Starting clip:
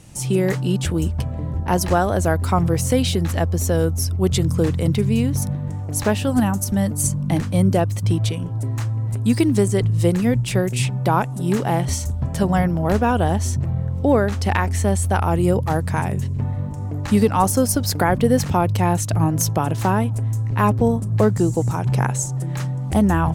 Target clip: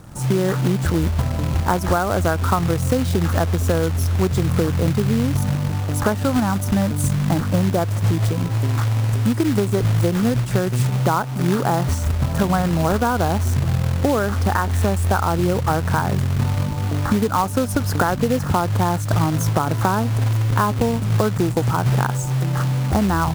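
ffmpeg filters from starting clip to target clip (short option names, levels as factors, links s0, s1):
-af "highshelf=f=1900:t=q:w=3:g=-10.5,acompressor=threshold=0.112:ratio=12,acrusher=bits=3:mode=log:mix=0:aa=0.000001,volume=1.68"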